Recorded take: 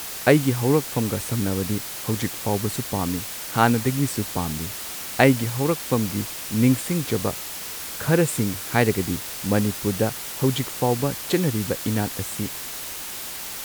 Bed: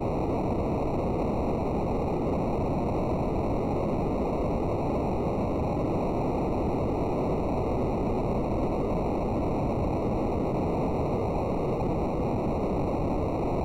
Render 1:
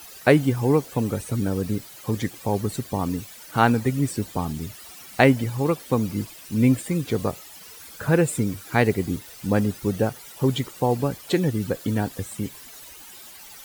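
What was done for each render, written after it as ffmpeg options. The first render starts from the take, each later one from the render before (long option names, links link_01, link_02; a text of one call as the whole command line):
ffmpeg -i in.wav -af "afftdn=noise_reduction=14:noise_floor=-34" out.wav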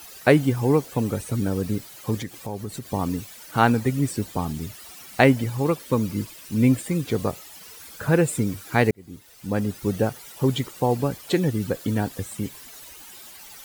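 ffmpeg -i in.wav -filter_complex "[0:a]asettb=1/sr,asplit=3[link_01][link_02][link_03];[link_01]atrim=end=2.224[link_04];[link_02]atrim=start=2.22:end=2.87,asetpts=PTS-STARTPTS,afade=type=in:duration=0.004:curve=qsin,afade=type=out:start_time=0.646:duration=0.004:curve=qsin,acompressor=threshold=-33dB:ratio=2:attack=3.2:release=140:knee=1:detection=peak[link_05];[link_03]atrim=start=2.866[link_06];[link_04][link_05]acrossfade=duration=0.004:curve1=hsin:curve2=qsin[link_07];[link_07][link_06]acrossfade=duration=0.004:curve1=qsin:curve2=hsin,asettb=1/sr,asplit=3[link_08][link_09][link_10];[link_08]atrim=end=5.784[link_11];[link_09]atrim=start=5.78:end=6.48,asetpts=PTS-STARTPTS,afade=type=in:duration=0.004:curve=qsin,afade=type=out:start_time=0.696:duration=0.004:curve=qsin,asuperstop=centerf=750:order=4:qfactor=5.5[link_12];[link_10]atrim=start=6.476[link_13];[link_11][link_12]acrossfade=duration=0.004:curve1=hsin:curve2=qsin[link_14];[link_14][link_13]acrossfade=duration=0.004:curve1=qsin:curve2=hsin,asplit=2[link_15][link_16];[link_15]atrim=end=8.91,asetpts=PTS-STARTPTS,afade=type=out:start_time=8.906:duration=0.004:curve=hsin[link_17];[link_16]atrim=start=8.91,asetpts=PTS-STARTPTS,afade=type=in:duration=1[link_18];[link_17][link_18]concat=n=2:v=0:a=1" out.wav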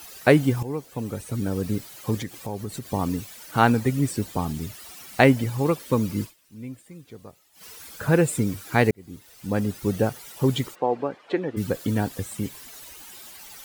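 ffmpeg -i in.wav -filter_complex "[0:a]asplit=3[link_01][link_02][link_03];[link_01]afade=type=out:start_time=10.74:duration=0.02[link_04];[link_02]highpass=340,lowpass=2000,afade=type=in:start_time=10.74:duration=0.02,afade=type=out:start_time=11.56:duration=0.02[link_05];[link_03]afade=type=in:start_time=11.56:duration=0.02[link_06];[link_04][link_05][link_06]amix=inputs=3:normalize=0,asplit=4[link_07][link_08][link_09][link_10];[link_07]atrim=end=0.63,asetpts=PTS-STARTPTS,afade=type=out:start_time=0.626:duration=0.004:curve=hsin:silence=0.211349[link_11];[link_08]atrim=start=0.63:end=6.37,asetpts=PTS-STARTPTS,afade=type=in:duration=1.16:silence=0.211349,afade=type=out:start_time=5.61:duration=0.13:curve=qua:silence=0.112202[link_12];[link_09]atrim=start=6.37:end=7.51,asetpts=PTS-STARTPTS,volume=-19dB[link_13];[link_10]atrim=start=7.51,asetpts=PTS-STARTPTS,afade=type=in:duration=0.13:curve=qua:silence=0.112202[link_14];[link_11][link_12][link_13][link_14]concat=n=4:v=0:a=1" out.wav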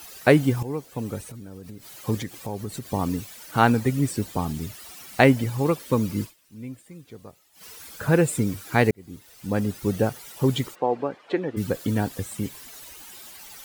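ffmpeg -i in.wav -filter_complex "[0:a]asettb=1/sr,asplit=3[link_01][link_02][link_03];[link_01]atrim=end=1.274[link_04];[link_02]atrim=start=1.27:end=1.95,asetpts=PTS-STARTPTS,afade=type=in:duration=0.004:curve=qsin,afade=type=out:start_time=0.676:duration=0.004:curve=qsin,acompressor=threshold=-37dB:ratio=8:attack=3.2:release=140:knee=1:detection=peak[link_05];[link_03]atrim=start=1.946[link_06];[link_04][link_05]acrossfade=duration=0.004:curve1=hsin:curve2=qsin[link_07];[link_07][link_06]acrossfade=duration=0.004:curve1=qsin:curve2=hsin" out.wav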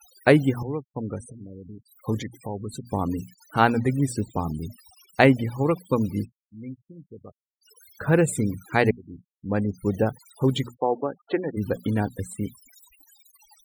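ffmpeg -i in.wav -af "bandreject=frequency=60:width_type=h:width=6,bandreject=frequency=120:width_type=h:width=6,bandreject=frequency=180:width_type=h:width=6,bandreject=frequency=240:width_type=h:width=6,afftfilt=real='re*gte(hypot(re,im),0.0158)':imag='im*gte(hypot(re,im),0.0158)':win_size=1024:overlap=0.75" out.wav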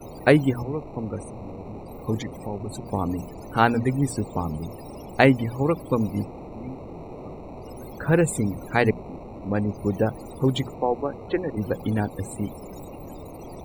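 ffmpeg -i in.wav -i bed.wav -filter_complex "[1:a]volume=-11.5dB[link_01];[0:a][link_01]amix=inputs=2:normalize=0" out.wav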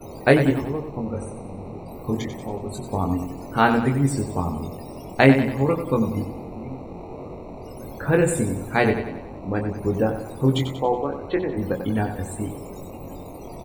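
ffmpeg -i in.wav -filter_complex "[0:a]asplit=2[link_01][link_02];[link_02]adelay=22,volume=-4.5dB[link_03];[link_01][link_03]amix=inputs=2:normalize=0,aecho=1:1:93|186|279|372|465|558:0.355|0.174|0.0852|0.0417|0.0205|0.01" out.wav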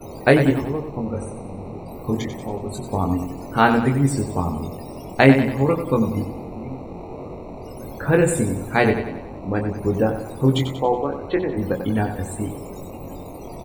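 ffmpeg -i in.wav -af "volume=2dB,alimiter=limit=-1dB:level=0:latency=1" out.wav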